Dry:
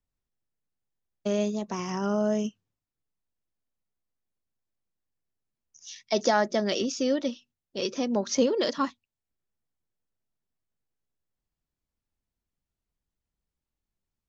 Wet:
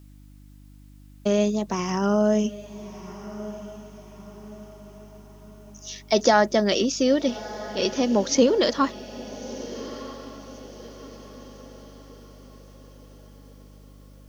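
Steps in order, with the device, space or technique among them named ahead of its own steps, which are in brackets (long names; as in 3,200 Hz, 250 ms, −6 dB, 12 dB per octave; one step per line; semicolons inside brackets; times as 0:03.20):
video cassette with head-switching buzz (hum with harmonics 50 Hz, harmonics 6, −54 dBFS −5 dB per octave; white noise bed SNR 39 dB)
feedback delay with all-pass diffusion 1,281 ms, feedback 45%, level −15 dB
level +5.5 dB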